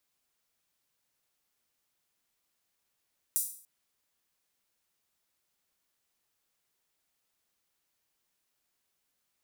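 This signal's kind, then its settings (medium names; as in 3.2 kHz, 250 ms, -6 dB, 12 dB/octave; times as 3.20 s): open hi-hat length 0.29 s, high-pass 8.7 kHz, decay 0.49 s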